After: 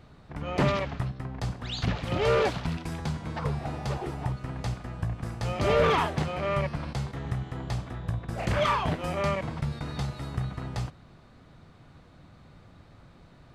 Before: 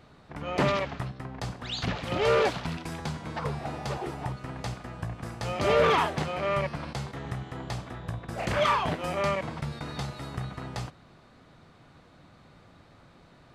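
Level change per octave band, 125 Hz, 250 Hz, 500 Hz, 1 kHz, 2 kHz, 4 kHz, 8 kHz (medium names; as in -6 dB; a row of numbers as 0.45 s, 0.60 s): +4.0 dB, +2.0 dB, -0.5 dB, -1.5 dB, -1.5 dB, -1.5 dB, -1.5 dB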